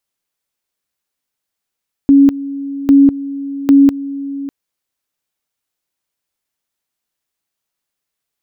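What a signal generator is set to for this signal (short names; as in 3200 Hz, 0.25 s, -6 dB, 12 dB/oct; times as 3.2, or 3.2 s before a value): two-level tone 278 Hz -3.5 dBFS, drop 16.5 dB, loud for 0.20 s, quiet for 0.60 s, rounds 3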